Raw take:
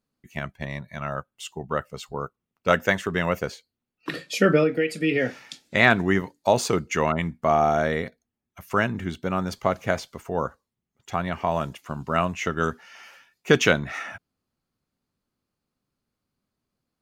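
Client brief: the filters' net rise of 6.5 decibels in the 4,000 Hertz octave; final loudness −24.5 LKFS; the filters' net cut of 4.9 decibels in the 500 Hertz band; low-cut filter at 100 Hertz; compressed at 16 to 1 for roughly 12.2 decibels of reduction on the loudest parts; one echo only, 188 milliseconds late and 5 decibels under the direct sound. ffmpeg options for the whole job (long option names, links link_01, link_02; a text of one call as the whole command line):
ffmpeg -i in.wav -af "highpass=100,equalizer=frequency=500:width_type=o:gain=-6.5,equalizer=frequency=4000:width_type=o:gain=8.5,acompressor=threshold=-24dB:ratio=16,aecho=1:1:188:0.562,volume=6dB" out.wav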